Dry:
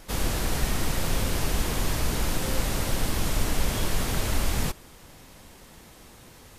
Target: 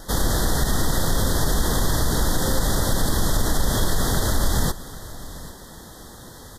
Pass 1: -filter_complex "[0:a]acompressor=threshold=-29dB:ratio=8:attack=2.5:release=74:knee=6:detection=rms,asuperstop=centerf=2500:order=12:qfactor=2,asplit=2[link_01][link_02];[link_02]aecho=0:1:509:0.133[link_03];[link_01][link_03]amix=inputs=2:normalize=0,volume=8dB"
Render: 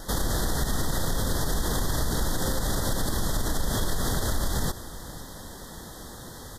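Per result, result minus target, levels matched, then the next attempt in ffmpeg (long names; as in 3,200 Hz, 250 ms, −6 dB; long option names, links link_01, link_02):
echo 286 ms early; downward compressor: peak gain reduction +7 dB
-filter_complex "[0:a]acompressor=threshold=-29dB:ratio=8:attack=2.5:release=74:knee=6:detection=rms,asuperstop=centerf=2500:order=12:qfactor=2,asplit=2[link_01][link_02];[link_02]aecho=0:1:795:0.133[link_03];[link_01][link_03]amix=inputs=2:normalize=0,volume=8dB"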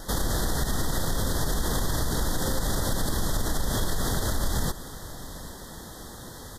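downward compressor: peak gain reduction +7 dB
-filter_complex "[0:a]acompressor=threshold=-21dB:ratio=8:attack=2.5:release=74:knee=6:detection=rms,asuperstop=centerf=2500:order=12:qfactor=2,asplit=2[link_01][link_02];[link_02]aecho=0:1:795:0.133[link_03];[link_01][link_03]amix=inputs=2:normalize=0,volume=8dB"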